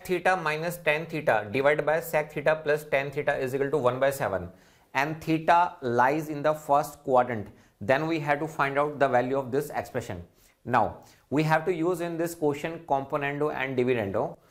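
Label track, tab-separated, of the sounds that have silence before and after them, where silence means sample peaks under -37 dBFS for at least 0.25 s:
4.940000	7.500000	sound
7.810000	10.220000	sound
10.660000	10.950000	sound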